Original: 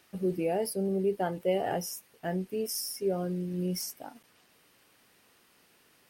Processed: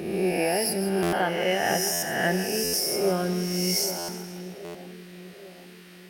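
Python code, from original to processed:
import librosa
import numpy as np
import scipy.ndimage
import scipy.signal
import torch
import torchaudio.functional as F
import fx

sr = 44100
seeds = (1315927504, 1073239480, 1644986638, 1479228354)

y = fx.spec_swells(x, sr, rise_s=1.18)
y = fx.graphic_eq_10(y, sr, hz=(125, 500, 2000, 4000), db=(-6, -4, 7, 5))
y = fx.rider(y, sr, range_db=10, speed_s=0.5)
y = fx.echo_split(y, sr, split_hz=680.0, low_ms=790, high_ms=159, feedback_pct=52, wet_db=-10.5)
y = fx.buffer_glitch(y, sr, at_s=(1.02, 1.92, 2.63, 3.98, 4.64), block=512, repeats=8)
y = y * 10.0 ** (5.0 / 20.0)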